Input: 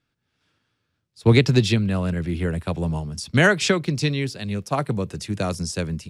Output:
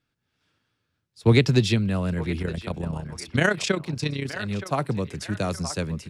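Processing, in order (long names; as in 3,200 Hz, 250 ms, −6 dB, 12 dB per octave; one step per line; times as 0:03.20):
0:02.42–0:04.33: amplitude modulation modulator 31 Hz, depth 55%
feedback echo with a band-pass in the loop 921 ms, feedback 51%, band-pass 1,200 Hz, level −10 dB
level −2 dB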